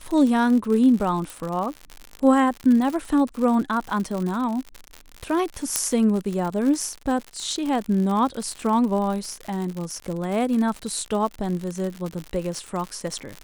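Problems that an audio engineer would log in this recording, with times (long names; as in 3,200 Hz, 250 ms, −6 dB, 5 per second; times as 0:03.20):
surface crackle 92 per second −27 dBFS
0:01.30: click
0:05.76: click −2 dBFS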